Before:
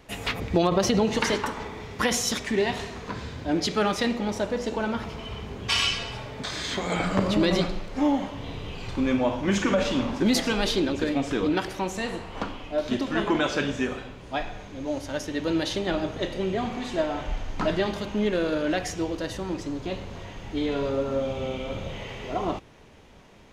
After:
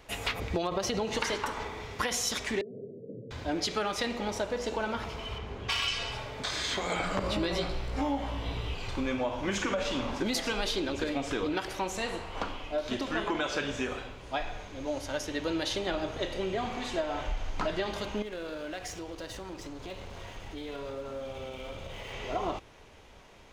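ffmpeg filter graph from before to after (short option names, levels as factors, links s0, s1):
-filter_complex "[0:a]asettb=1/sr,asplit=3[s0][s1][s2];[s0]atrim=end=2.614[s3];[s1]atrim=start=2.61:end=3.31,asetpts=PTS-STARTPTS,afade=t=in:d=0.004:c=qsin,afade=t=out:st=0.696:d=0.004:c=qsin,acompressor=threshold=0.0398:ratio=6:attack=3.2:release=140:knee=1:detection=peak,asuperpass=centerf=250:order=20:qfactor=0.56[s4];[s2]atrim=start=3.306[s5];[s3][s4]acrossfade=d=0.004:c1=hsin:c2=qsin[s6];[s6][s5]acrossfade=d=0.004:c1=qsin:c2=hsin,asettb=1/sr,asplit=3[s7][s8][s9];[s7]atrim=end=5.384[s10];[s8]atrim=start=5.38:end=5.88,asetpts=PTS-STARTPTS,afade=t=in:d=0.004:c=qsin,afade=t=out:st=0.496:d=0.004:c=qsin,lowpass=f=3100:p=1,aeval=exprs='clip(val(0),-1,0.0794)':c=same[s11];[s9]atrim=start=5.876[s12];[s10][s11]acrossfade=d=0.004:c1=hsin:c2=qsin[s13];[s13][s12]acrossfade=d=0.004:c1=qsin:c2=hsin,asettb=1/sr,asplit=3[s14][s15][s16];[s14]atrim=end=7.224[s17];[s15]atrim=start=7.22:end=8.74,asetpts=PTS-STARTPTS,afade=t=in:d=0.004:c=qsin,afade=t=out:st=1.516:d=0.004:c=qsin,bandreject=f=6500:w=13,aeval=exprs='val(0)+0.0158*(sin(2*PI*60*n/s)+sin(2*PI*2*60*n/s)/2+sin(2*PI*3*60*n/s)/3+sin(2*PI*4*60*n/s)/4+sin(2*PI*5*60*n/s)/5)':c=same,asplit=2[s18][s19];[s19]adelay=18,volume=0.631[s20];[s18][s20]amix=inputs=2:normalize=0,atrim=end_sample=67032[s21];[s16]atrim=start=8.736[s22];[s17][s21]acrossfade=d=0.004:c1=hsin:c2=qsin[s23];[s23][s22]acrossfade=d=0.004:c1=qsin:c2=hsin,asettb=1/sr,asplit=3[s24][s25][s26];[s24]atrim=end=18.224[s27];[s25]atrim=start=18.22:end=22.13,asetpts=PTS-STARTPTS,afade=t=in:d=0.004:c=qsin,afade=t=out:st=3.906:d=0.004:c=qsin,acompressor=threshold=0.02:ratio=3:attack=3.2:release=140:knee=1:detection=peak,aeval=exprs='sgn(val(0))*max(abs(val(0))-0.00266,0)':c=same[s28];[s26]atrim=start=22.126[s29];[s27][s28]acrossfade=d=0.004:c1=hsin:c2=qsin[s30];[s30][s29]acrossfade=d=0.004:c1=qsin:c2=hsin,equalizer=f=190:w=0.78:g=-8,bandreject=f=1800:w=30,acompressor=threshold=0.0447:ratio=6"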